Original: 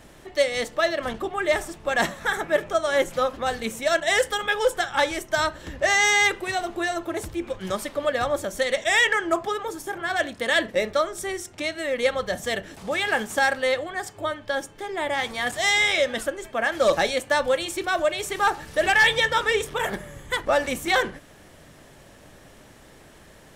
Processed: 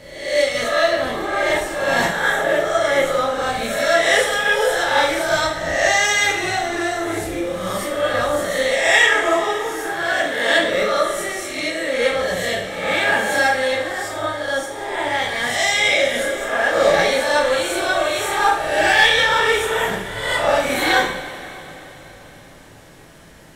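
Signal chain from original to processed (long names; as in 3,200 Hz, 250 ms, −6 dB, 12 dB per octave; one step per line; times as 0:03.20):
peak hold with a rise ahead of every peak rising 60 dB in 0.84 s
coupled-rooms reverb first 0.53 s, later 4 s, from −17 dB, DRR −3 dB
level −2.5 dB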